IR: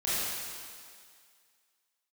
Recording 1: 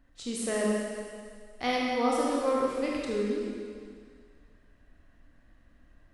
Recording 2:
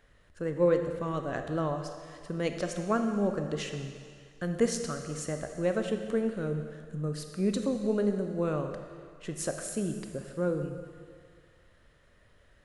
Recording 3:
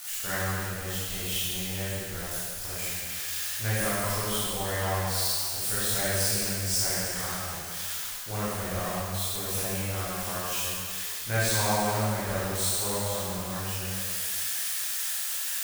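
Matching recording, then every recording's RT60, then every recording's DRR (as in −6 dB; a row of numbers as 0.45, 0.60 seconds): 3; 2.0, 2.0, 2.0 seconds; −4.0, 5.5, −11.0 decibels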